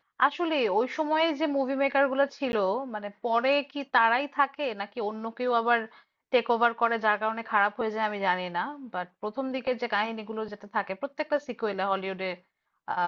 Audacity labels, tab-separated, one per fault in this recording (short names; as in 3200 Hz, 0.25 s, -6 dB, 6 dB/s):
2.520000	2.530000	gap 11 ms